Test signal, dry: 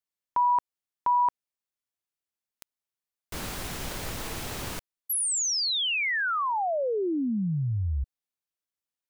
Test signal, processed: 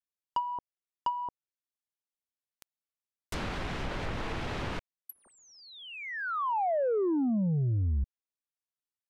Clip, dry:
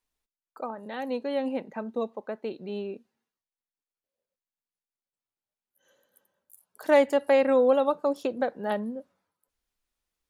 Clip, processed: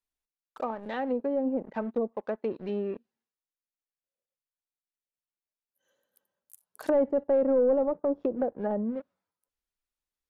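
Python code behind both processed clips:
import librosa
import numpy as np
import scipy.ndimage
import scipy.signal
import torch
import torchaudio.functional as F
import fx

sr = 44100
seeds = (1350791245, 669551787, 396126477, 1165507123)

y = fx.leveller(x, sr, passes=2)
y = fx.env_lowpass_down(y, sr, base_hz=570.0, full_db=-19.0)
y = y * librosa.db_to_amplitude(-5.0)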